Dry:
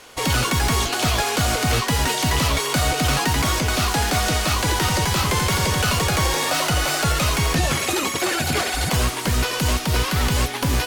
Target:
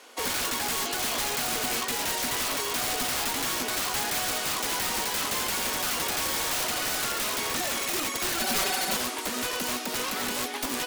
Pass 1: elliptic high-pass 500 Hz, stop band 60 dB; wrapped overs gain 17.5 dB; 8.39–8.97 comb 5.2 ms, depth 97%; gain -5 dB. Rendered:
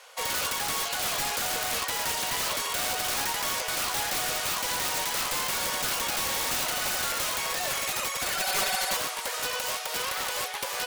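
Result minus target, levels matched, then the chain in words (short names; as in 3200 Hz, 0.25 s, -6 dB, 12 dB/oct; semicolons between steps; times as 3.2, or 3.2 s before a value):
250 Hz band -7.5 dB
elliptic high-pass 230 Hz, stop band 60 dB; wrapped overs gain 17.5 dB; 8.39–8.97 comb 5.2 ms, depth 97%; gain -5 dB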